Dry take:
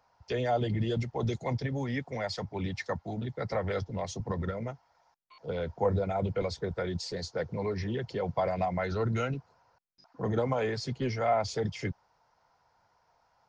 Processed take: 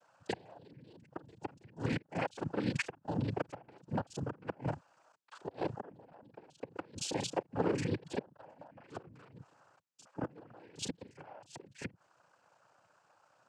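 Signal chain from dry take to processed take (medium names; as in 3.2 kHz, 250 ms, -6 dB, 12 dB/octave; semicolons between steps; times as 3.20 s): time reversed locally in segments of 32 ms; inverted gate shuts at -23 dBFS, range -27 dB; noise-vocoded speech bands 8; trim +1.5 dB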